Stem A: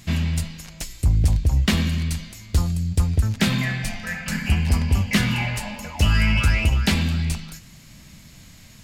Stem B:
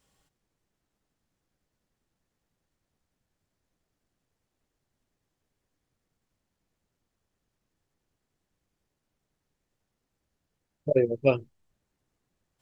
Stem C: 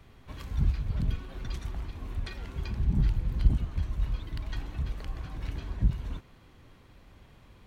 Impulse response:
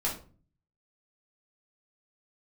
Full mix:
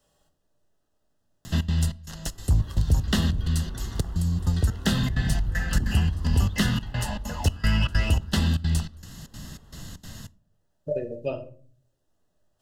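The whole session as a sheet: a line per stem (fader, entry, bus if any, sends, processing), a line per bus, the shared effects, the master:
-2.0 dB, 1.45 s, send -23.5 dB, trance gate "xx.xxx..x" 194 bpm -24 dB
-14.0 dB, 0.00 s, send -7 dB, small resonant body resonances 610/2500 Hz, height 12 dB
6.55 s -3 dB -> 7.19 s -11 dB, 2.30 s, send -12.5 dB, none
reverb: on, RT60 0.40 s, pre-delay 3 ms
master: Butterworth band-stop 2.3 kHz, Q 3.2; three bands compressed up and down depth 40%

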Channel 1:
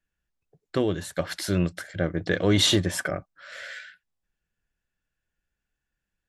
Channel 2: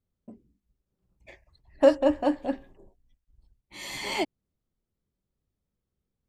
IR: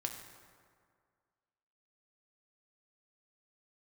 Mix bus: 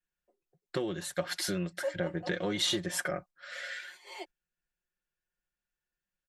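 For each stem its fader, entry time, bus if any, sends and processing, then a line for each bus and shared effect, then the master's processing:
-2.5 dB, 0.00 s, no send, compression 6:1, threshold -25 dBFS, peak gain reduction 9 dB; bass shelf 380 Hz -5.5 dB
-10.5 dB, 0.00 s, no send, steep high-pass 370 Hz 36 dB/octave; auto duck -9 dB, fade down 0.30 s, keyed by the first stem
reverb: none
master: gate -52 dBFS, range -6 dB; comb 5.6 ms, depth 67%

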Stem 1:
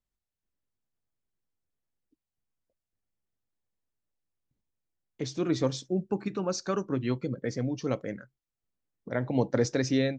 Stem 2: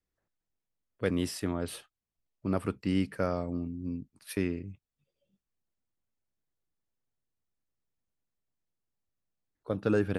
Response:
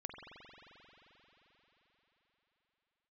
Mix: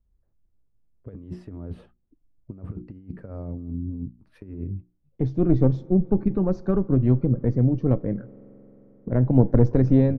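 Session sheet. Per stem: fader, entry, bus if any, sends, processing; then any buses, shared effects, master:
+1.0 dB, 0.00 s, send -16 dB, single-diode clipper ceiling -25.5 dBFS; tilt EQ -4.5 dB/octave
-6.0 dB, 0.05 s, no send, tilt EQ -4 dB/octave; hum notches 60/120/180/240/300/360 Hz; compressor with a negative ratio -27 dBFS, ratio -0.5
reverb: on, RT60 4.6 s, pre-delay 44 ms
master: low-pass 1.1 kHz 6 dB/octave

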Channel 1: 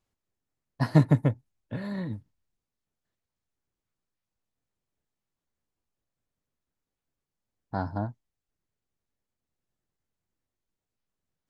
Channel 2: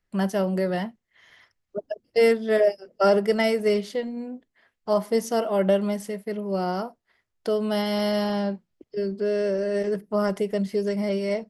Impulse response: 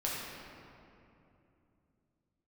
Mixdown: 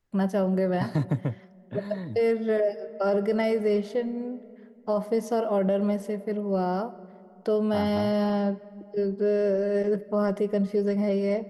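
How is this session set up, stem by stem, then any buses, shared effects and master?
-2.0 dB, 0.00 s, no send, high-pass 86 Hz 24 dB/octave
+0.5 dB, 0.00 s, send -21.5 dB, treble shelf 2 kHz -10.5 dB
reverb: on, RT60 2.8 s, pre-delay 6 ms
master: peak limiter -17 dBFS, peak gain reduction 7.5 dB

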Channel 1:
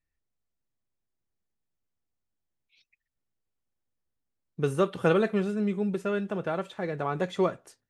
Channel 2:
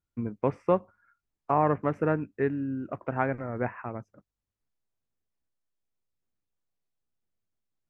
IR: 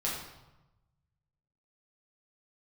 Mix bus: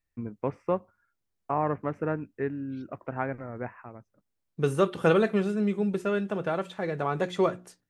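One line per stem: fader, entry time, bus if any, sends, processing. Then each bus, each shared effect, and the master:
+1.5 dB, 0.00 s, no send, hum notches 60/120/180/240/300/360 Hz
-3.5 dB, 0.00 s, no send, expander -54 dBFS; auto duck -12 dB, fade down 1.15 s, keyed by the first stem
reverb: none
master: none

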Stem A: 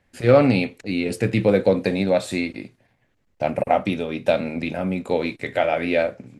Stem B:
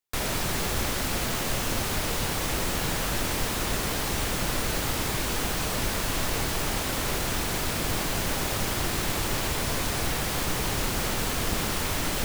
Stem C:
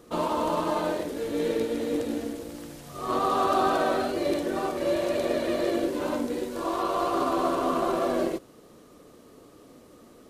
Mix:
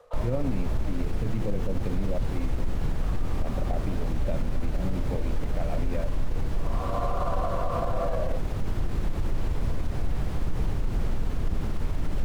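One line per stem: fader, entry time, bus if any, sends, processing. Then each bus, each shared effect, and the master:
-17.0 dB, 0.00 s, no send, none
-9.5 dB, 0.00 s, no send, none
+2.0 dB, 0.00 s, no send, elliptic high-pass 500 Hz; compression, threshold -28 dBFS, peak gain reduction 7 dB; auto duck -19 dB, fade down 0.35 s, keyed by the first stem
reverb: none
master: tilt EQ -4 dB/octave; peak limiter -17.5 dBFS, peak gain reduction 9 dB

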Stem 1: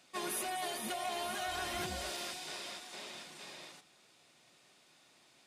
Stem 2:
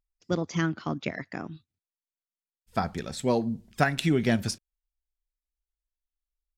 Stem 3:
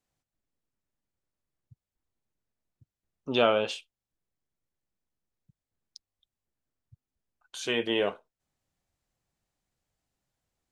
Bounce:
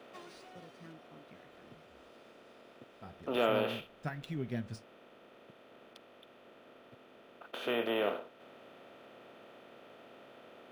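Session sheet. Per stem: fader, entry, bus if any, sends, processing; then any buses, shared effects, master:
-5.5 dB, 0.00 s, no send, compression 2:1, threshold -42 dBFS, peak gain reduction 5 dB; auto duck -18 dB, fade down 1.10 s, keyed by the third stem
2.88 s -24 dB -> 3.50 s -13 dB, 0.25 s, no send, flange 0.26 Hz, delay 6.2 ms, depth 8.2 ms, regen +63%
-9.0 dB, 0.00 s, no send, spectral levelling over time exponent 0.4; three-band isolator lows -14 dB, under 180 Hz, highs -12 dB, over 4.1 kHz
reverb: none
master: tone controls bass +4 dB, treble -3 dB; decimation joined by straight lines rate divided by 3×

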